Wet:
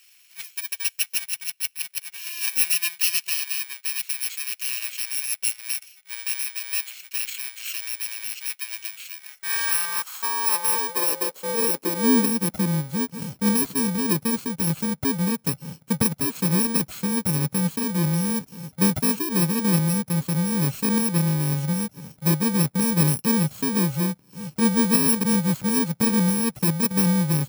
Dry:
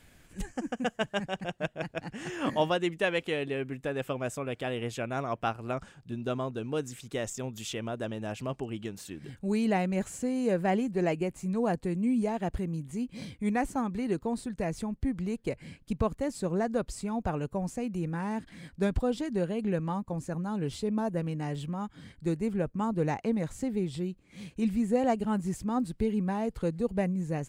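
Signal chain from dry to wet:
samples in bit-reversed order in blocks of 64 samples
high-pass filter sweep 2,300 Hz → 150 Hz, 0:09.10–0:12.96
level +5.5 dB

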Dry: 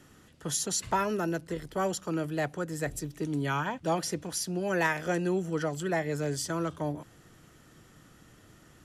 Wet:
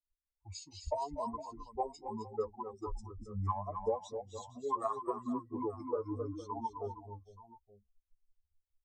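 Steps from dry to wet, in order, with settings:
spectral dynamics exaggerated over time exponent 3
drawn EQ curve 110 Hz 0 dB, 180 Hz −29 dB, 1,500 Hz +6 dB, 2,200 Hz −29 dB, 4,900 Hz −26 dB, 12,000 Hz 0 dB
low-pass that shuts in the quiet parts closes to 2,300 Hz, open at −33.5 dBFS
downward compressor 20 to 1, threshold −40 dBFS, peak gain reduction 13.5 dB
dynamic equaliser 1,300 Hz, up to −4 dB, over −54 dBFS, Q 1.9
pitch shifter −6.5 semitones
multi-tap delay 241/261/462/880 ms −19.5/−8/−15.5/−17 dB
flanger 0.76 Hz, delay 3.5 ms, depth 9 ms, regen +34%
level +15.5 dB

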